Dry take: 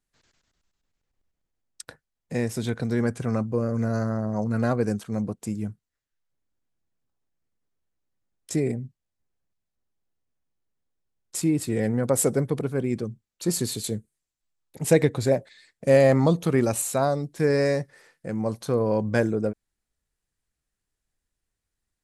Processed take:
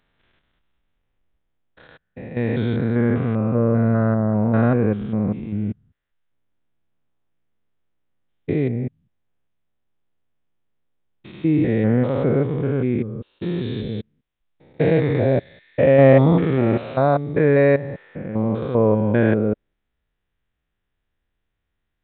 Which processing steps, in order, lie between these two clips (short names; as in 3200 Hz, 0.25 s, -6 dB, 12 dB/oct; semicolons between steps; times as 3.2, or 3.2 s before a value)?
stepped spectrum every 0.2 s; downsampling 8000 Hz; gain +8 dB